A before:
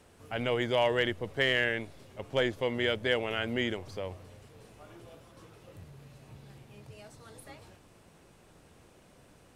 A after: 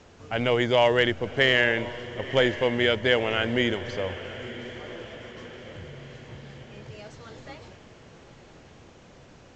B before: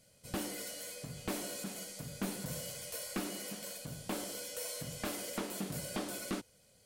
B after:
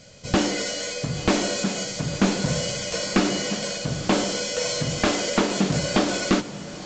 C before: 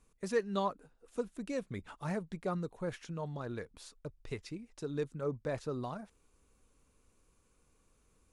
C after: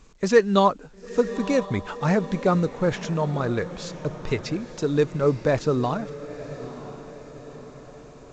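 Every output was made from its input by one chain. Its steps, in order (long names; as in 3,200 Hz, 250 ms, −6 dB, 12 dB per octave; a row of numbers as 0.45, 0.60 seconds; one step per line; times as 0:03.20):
feedback delay with all-pass diffusion 956 ms, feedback 51%, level −14 dB
mu-law 128 kbit/s 16,000 Hz
loudness normalisation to −24 LKFS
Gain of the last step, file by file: +6.5, +17.5, +15.0 decibels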